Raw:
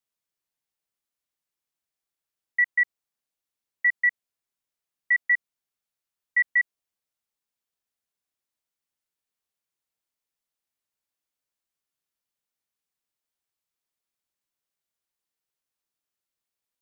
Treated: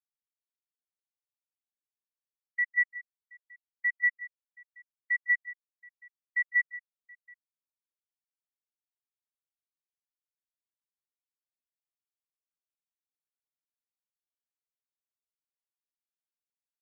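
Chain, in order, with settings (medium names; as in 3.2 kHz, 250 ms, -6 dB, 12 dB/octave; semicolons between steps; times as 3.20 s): multi-tap echo 155/178/726 ms -16.5/-10.5/-16.5 dB; spectral contrast expander 1.5:1; trim -5.5 dB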